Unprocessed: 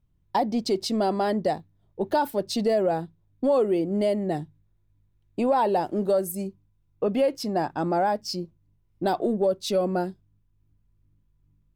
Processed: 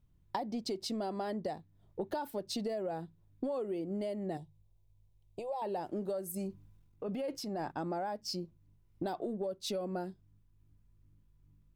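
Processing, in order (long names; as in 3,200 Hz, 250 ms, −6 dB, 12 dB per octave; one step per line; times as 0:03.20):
downward compressor 6 to 1, threshold −35 dBFS, peak gain reduction 16 dB
0:04.37–0:05.62: phaser with its sweep stopped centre 620 Hz, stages 4
0:06.37–0:07.72: transient designer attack −7 dB, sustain +7 dB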